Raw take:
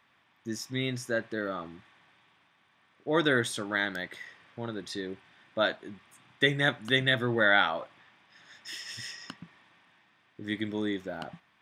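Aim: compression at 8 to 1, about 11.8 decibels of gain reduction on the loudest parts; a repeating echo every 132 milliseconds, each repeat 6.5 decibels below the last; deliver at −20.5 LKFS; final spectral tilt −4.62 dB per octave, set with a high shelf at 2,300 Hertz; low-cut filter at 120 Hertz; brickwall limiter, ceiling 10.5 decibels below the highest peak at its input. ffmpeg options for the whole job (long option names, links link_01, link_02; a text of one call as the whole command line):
ffmpeg -i in.wav -af "highpass=120,highshelf=frequency=2300:gain=-6.5,acompressor=threshold=-33dB:ratio=8,alimiter=level_in=7dB:limit=-24dB:level=0:latency=1,volume=-7dB,aecho=1:1:132|264|396|528|660|792:0.473|0.222|0.105|0.0491|0.0231|0.0109,volume=22dB" out.wav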